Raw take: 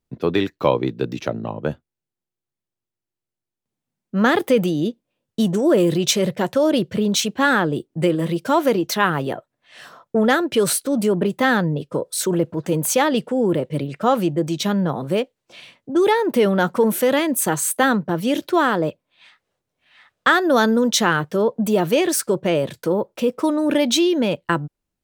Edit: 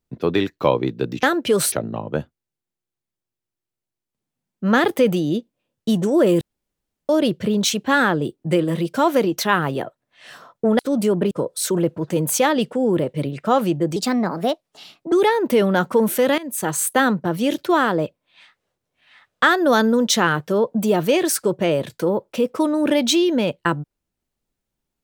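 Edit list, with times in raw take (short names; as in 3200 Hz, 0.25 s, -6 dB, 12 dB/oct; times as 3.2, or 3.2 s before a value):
5.92–6.6 room tone
10.3–10.79 move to 1.23
11.31–11.87 cut
14.52–15.96 speed 124%
17.22–17.63 fade in, from -16.5 dB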